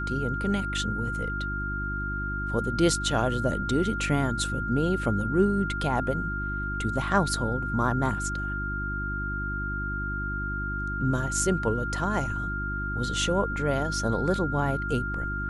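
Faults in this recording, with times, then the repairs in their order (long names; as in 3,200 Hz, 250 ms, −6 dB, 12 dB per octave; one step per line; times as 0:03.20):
mains hum 50 Hz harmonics 7 −33 dBFS
whistle 1,400 Hz −31 dBFS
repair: hum removal 50 Hz, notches 7
notch filter 1,400 Hz, Q 30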